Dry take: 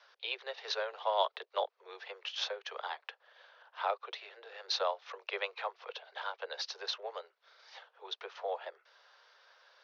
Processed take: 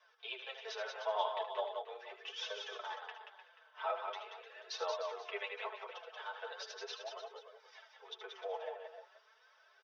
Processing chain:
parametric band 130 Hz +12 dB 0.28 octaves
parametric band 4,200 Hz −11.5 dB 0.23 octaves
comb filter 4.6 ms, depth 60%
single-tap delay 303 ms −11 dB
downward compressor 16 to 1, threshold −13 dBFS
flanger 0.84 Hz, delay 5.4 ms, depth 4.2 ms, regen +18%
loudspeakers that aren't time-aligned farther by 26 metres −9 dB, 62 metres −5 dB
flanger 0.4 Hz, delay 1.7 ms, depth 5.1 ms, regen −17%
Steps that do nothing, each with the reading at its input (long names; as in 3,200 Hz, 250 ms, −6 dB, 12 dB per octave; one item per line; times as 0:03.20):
parametric band 130 Hz: nothing at its input below 340 Hz
downward compressor, threshold −13 dBFS: peak of its input −16.5 dBFS